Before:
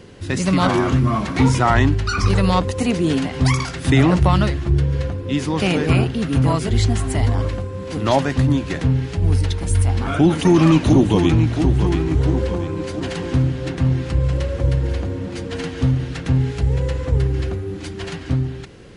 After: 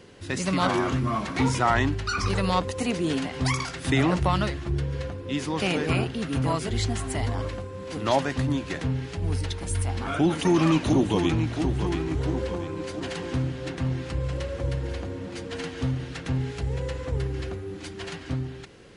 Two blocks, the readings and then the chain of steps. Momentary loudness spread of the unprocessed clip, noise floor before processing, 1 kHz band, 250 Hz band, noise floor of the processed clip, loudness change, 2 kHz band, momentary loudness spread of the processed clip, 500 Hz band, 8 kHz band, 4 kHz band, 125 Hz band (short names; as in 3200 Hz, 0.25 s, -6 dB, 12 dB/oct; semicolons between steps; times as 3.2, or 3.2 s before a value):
11 LU, -31 dBFS, -5.0 dB, -8.0 dB, -39 dBFS, -8.0 dB, -4.5 dB, 11 LU, -6.5 dB, -4.5 dB, -4.5 dB, -10.0 dB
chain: low shelf 260 Hz -7 dB; gain -4.5 dB